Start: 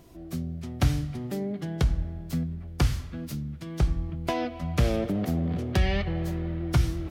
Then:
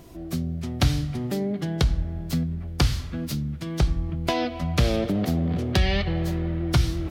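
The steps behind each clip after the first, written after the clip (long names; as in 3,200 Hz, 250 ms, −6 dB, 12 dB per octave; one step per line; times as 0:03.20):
dynamic equaliser 4,100 Hz, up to +7 dB, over −53 dBFS, Q 1.4
in parallel at 0 dB: downward compressor, threshold −31 dBFS, peak gain reduction 13.5 dB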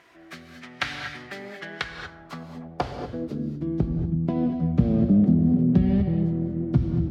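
reverb whose tail is shaped and stops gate 260 ms rising, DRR 5.5 dB
band-pass filter sweep 1,800 Hz → 200 Hz, 0:01.90–0:03.99
level +8.5 dB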